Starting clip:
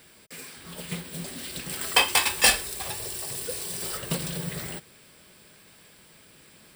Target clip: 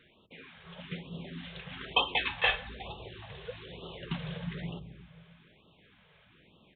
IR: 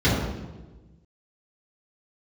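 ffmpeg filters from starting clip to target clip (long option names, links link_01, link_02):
-filter_complex "[0:a]asplit=2[link_01][link_02];[1:a]atrim=start_sample=2205,lowpass=1500,adelay=141[link_03];[link_02][link_03]afir=irnorm=-1:irlink=0,volume=-35dB[link_04];[link_01][link_04]amix=inputs=2:normalize=0,aresample=8000,aresample=44100,afftfilt=real='re*(1-between(b*sr/1024,250*pow(1900/250,0.5+0.5*sin(2*PI*1.1*pts/sr))/1.41,250*pow(1900/250,0.5+0.5*sin(2*PI*1.1*pts/sr))*1.41))':imag='im*(1-between(b*sr/1024,250*pow(1900/250,0.5+0.5*sin(2*PI*1.1*pts/sr))/1.41,250*pow(1900/250,0.5+0.5*sin(2*PI*1.1*pts/sr))*1.41))':win_size=1024:overlap=0.75,volume=-5dB"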